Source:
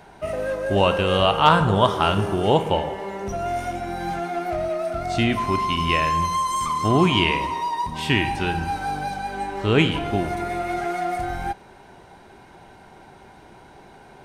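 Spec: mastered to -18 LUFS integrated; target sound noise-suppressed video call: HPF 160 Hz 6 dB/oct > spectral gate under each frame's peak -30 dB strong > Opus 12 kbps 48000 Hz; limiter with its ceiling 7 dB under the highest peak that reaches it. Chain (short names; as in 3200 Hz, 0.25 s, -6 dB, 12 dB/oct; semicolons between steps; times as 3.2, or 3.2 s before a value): limiter -10 dBFS; HPF 160 Hz 6 dB/oct; spectral gate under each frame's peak -30 dB strong; gain +7 dB; Opus 12 kbps 48000 Hz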